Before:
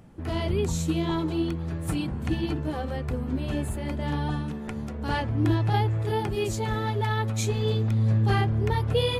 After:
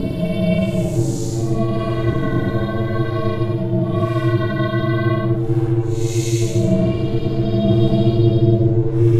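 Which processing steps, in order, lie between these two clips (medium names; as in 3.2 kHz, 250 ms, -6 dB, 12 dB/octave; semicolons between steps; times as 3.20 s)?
Paulstretch 5.8×, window 0.10 s, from 6.33 s; ring modulator 230 Hz; bass shelf 470 Hz +11.5 dB; trim +3.5 dB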